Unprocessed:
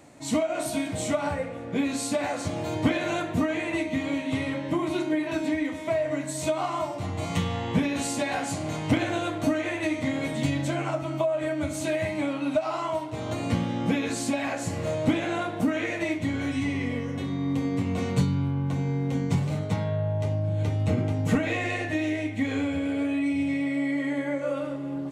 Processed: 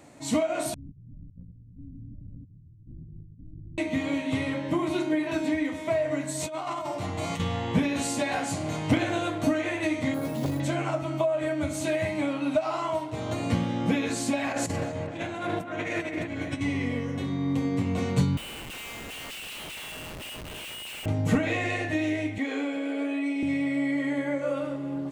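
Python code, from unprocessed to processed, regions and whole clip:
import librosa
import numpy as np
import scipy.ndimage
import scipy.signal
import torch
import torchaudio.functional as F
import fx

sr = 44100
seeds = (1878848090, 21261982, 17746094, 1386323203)

y = fx.chain(x, sr, fx.clip_1bit(),
    fx.cheby2_lowpass(hz=890.0, order=4, stop_db=80),
    fx.over_compress(threshold_db=-46.0, ratio=-1.0), at=(0.74, 3.78))
y = fx.chain(y, sr, fx.low_shelf(hz=180.0, db=-6.5),
    fx.over_compress(threshold_db=-32.0, ratio=-1.0), at=(6.4, 7.4))
y = fx.chain(y, sr, fx.band_shelf(hz=2700.0, db=-10.0, octaves=1.3),
    fx.resample_bad(factor=4, down='none', up='hold'),
    fx.transformer_sat(knee_hz=410.0), at=(10.14, 10.6))
y = fx.chain(y, sr, fx.over_compress(threshold_db=-32.0, ratio=-0.5),
    fx.echo_wet_lowpass(ms=257, feedback_pct=41, hz=2600.0, wet_db=-5.5), at=(14.51, 16.61))
y = fx.chain(y, sr, fx.highpass_res(hz=2800.0, q=10.0),
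    fx.schmitt(flips_db=-45.5), at=(18.37, 21.06))
y = fx.chain(y, sr, fx.highpass(hz=280.0, slope=24),
    fx.high_shelf(hz=6000.0, db=-5.0),
    fx.notch(hz=1000.0, q=30.0), at=(22.38, 23.43))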